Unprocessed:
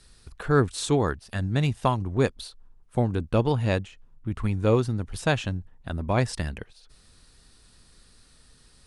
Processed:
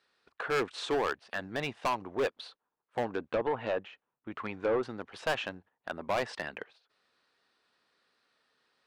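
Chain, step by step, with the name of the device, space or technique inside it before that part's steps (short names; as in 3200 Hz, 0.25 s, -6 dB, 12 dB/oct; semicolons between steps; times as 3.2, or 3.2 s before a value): walkie-talkie (BPF 500–2700 Hz; hard clip -27 dBFS, distortion -6 dB; gate -58 dBFS, range -10 dB); 3.03–4.83 treble ducked by the level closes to 1500 Hz, closed at -28 dBFS; gain +2.5 dB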